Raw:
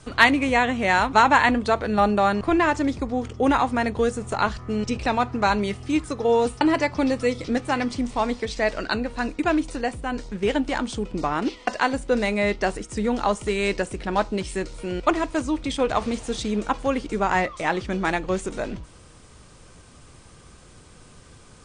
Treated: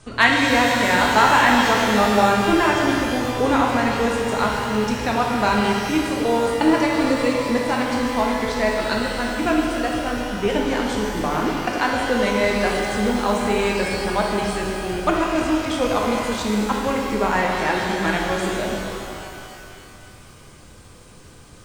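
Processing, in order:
reverb with rising layers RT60 2.8 s, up +12 semitones, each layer −8 dB, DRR −1.5 dB
level −1 dB

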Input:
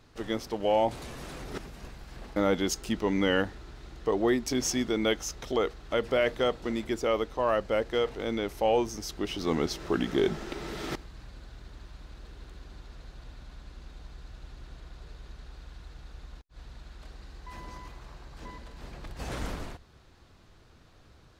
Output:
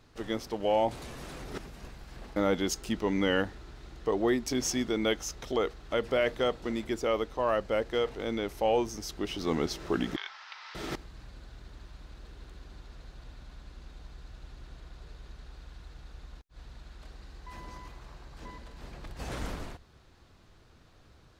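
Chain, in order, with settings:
0:10.16–0:10.75: elliptic band-pass filter 960–5,300 Hz, stop band 50 dB
level −1.5 dB

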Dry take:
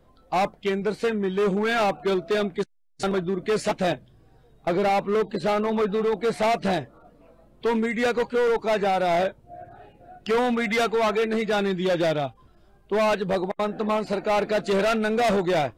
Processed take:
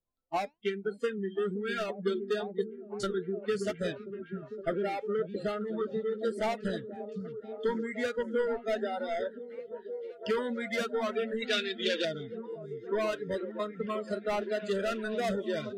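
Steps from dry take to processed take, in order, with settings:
0:11.42–0:12.05: meter weighting curve D
transient designer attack +6 dB, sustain −1 dB
0:13.07–0:14.36: high-shelf EQ 3,700 Hz +2.5 dB
noise reduction from a noise print of the clip's start 26 dB
flanger 1.1 Hz, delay 0.4 ms, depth 3.4 ms, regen +89%
echo through a band-pass that steps 515 ms, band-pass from 170 Hz, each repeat 0.7 octaves, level −3 dB
level −5.5 dB

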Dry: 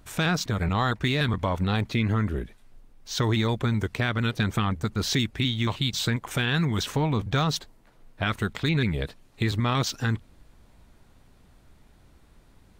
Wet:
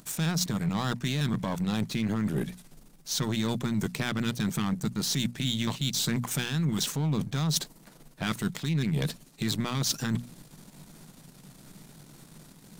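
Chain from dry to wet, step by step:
gain on one half-wave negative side −7 dB
low shelf with overshoot 110 Hz −12 dB, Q 3
in parallel at +1 dB: brickwall limiter −22.5 dBFS, peak gain reduction 10.5 dB
on the sum: bass and treble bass +4 dB, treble +12 dB
mains-hum notches 60/120/180/240 Hz
reversed playback
downward compressor 6 to 1, threshold −26 dBFS, peak gain reduction 13.5 dB
reversed playback

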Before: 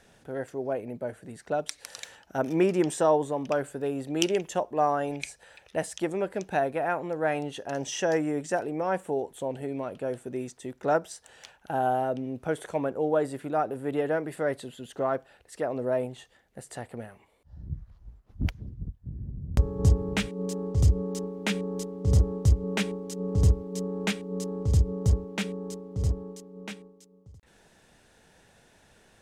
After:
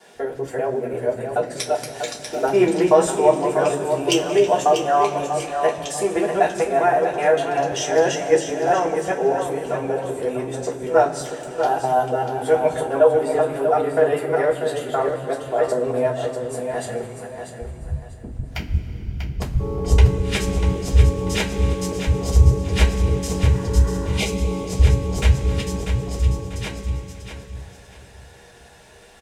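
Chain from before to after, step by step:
reversed piece by piece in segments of 194 ms
on a send: repeating echo 642 ms, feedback 27%, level −8.5 dB
on the sum: healed spectral selection 0:23.53–0:24.25, 870–2,000 Hz before
in parallel at −2.5 dB: downward compressor, threshold −34 dBFS, peak gain reduction 17.5 dB
on the sum: multiband delay without the direct sound highs, lows 150 ms, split 190 Hz
coupled-rooms reverb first 0.2 s, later 3.8 s, from −22 dB, DRR −5.5 dB

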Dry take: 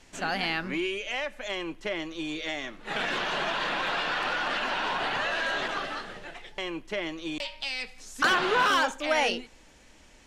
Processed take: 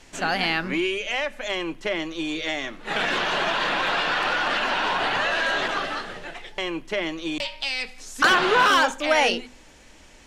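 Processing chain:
mains-hum notches 50/100/150/200/250 Hz
level +5.5 dB

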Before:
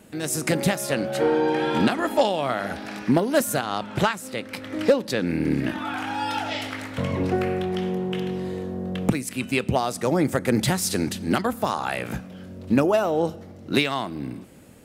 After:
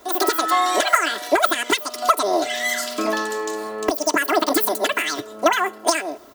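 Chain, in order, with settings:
high-shelf EQ 7,400 Hz +11 dB
comb filter 7 ms, depth 100%
wrong playback speed 33 rpm record played at 78 rpm

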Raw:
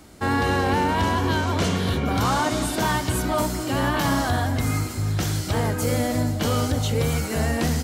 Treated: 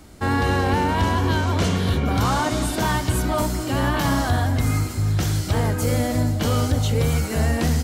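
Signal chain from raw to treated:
low-shelf EQ 86 Hz +8.5 dB

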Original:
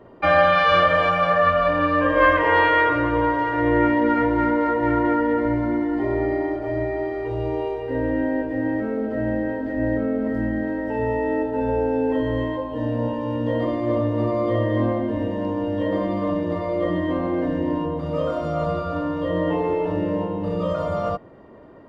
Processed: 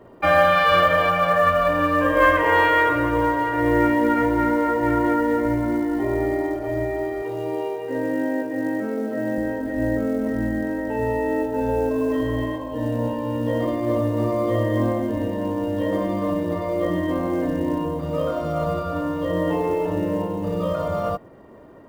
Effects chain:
0:11.92–0:12.66: healed spectral selection 490–1,100 Hz after
floating-point word with a short mantissa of 4 bits
0:07.22–0:09.38: Chebyshev high-pass filter 150 Hz, order 3

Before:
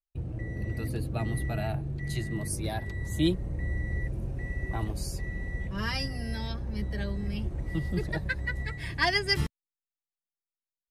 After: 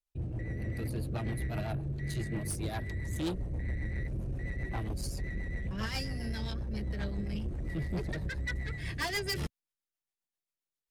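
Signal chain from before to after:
soft clipping −31.5 dBFS, distortion −8 dB
rotating-speaker cabinet horn 7.5 Hz
level +2.5 dB

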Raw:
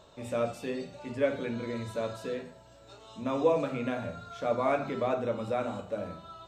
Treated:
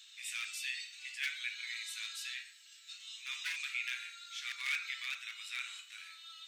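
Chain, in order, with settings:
gain into a clipping stage and back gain 22 dB
Butterworth high-pass 2,000 Hz 36 dB per octave
level +8.5 dB

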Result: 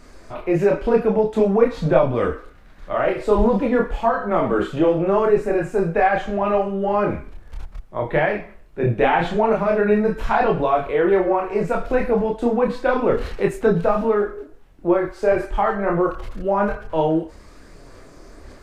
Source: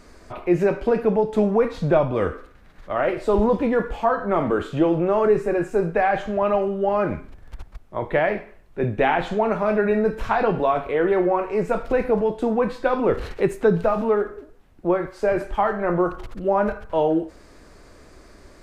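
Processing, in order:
multi-voice chorus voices 6, 0.45 Hz, delay 28 ms, depth 3.9 ms
level +5 dB

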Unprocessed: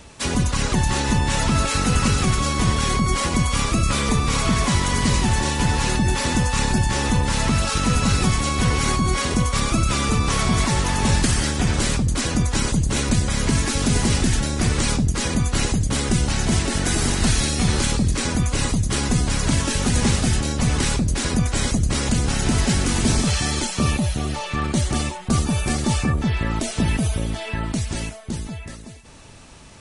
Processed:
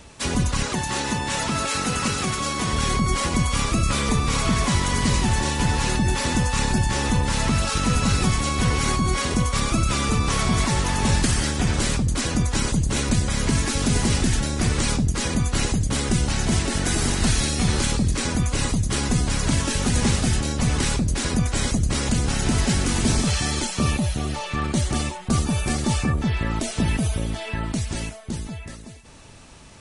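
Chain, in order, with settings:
0:00.63–0:02.73: high-pass filter 240 Hz 6 dB per octave
level −1.5 dB

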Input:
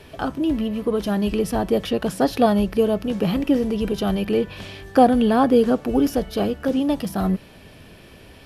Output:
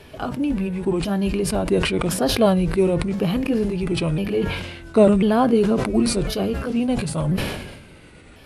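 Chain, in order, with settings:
pitch shifter swept by a sawtooth −4 semitones, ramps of 1,045 ms
level that may fall only so fast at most 49 dB per second

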